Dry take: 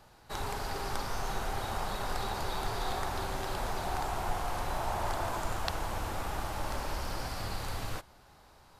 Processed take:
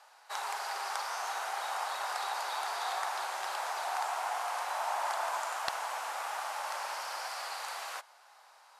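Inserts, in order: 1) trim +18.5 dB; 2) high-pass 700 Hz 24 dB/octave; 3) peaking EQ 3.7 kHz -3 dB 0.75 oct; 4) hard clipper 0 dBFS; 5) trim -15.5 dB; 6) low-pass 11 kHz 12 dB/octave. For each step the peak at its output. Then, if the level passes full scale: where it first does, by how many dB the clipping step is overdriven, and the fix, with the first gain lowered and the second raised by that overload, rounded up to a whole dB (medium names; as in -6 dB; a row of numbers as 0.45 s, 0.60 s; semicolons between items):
+7.5 dBFS, +8.0 dBFS, +6.5 dBFS, 0.0 dBFS, -15.5 dBFS, -14.5 dBFS; step 1, 6.5 dB; step 1 +11.5 dB, step 5 -8.5 dB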